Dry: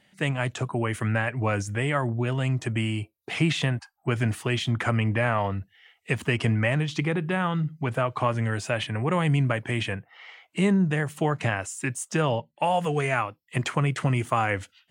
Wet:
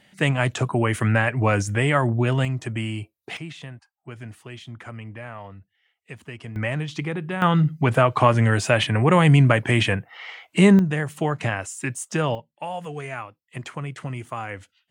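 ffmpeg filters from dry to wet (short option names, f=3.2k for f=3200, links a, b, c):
-af "asetnsamples=n=441:p=0,asendcmd='2.45 volume volume -1dB;3.37 volume volume -13dB;6.56 volume volume -2dB;7.42 volume volume 8dB;10.79 volume volume 1dB;12.35 volume volume -7.5dB',volume=5.5dB"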